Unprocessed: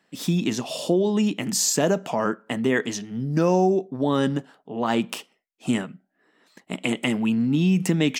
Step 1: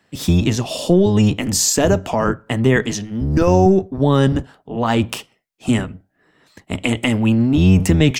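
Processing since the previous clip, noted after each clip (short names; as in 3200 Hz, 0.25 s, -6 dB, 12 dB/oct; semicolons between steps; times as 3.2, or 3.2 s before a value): octaver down 1 oct, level -1 dB; gain +5.5 dB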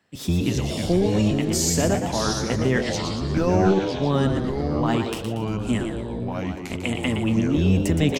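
on a send: frequency-shifting echo 0.117 s, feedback 44%, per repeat +110 Hz, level -7.5 dB; on the sum: echoes that change speed 0.195 s, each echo -4 st, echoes 3, each echo -6 dB; gain -7.5 dB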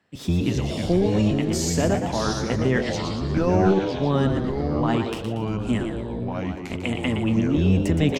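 high shelf 6100 Hz -9.5 dB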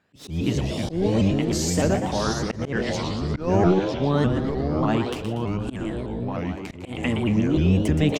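auto swell 0.163 s; shaped vibrato saw up 3.3 Hz, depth 160 cents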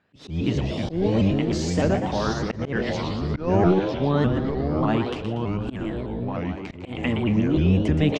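LPF 4400 Hz 12 dB/oct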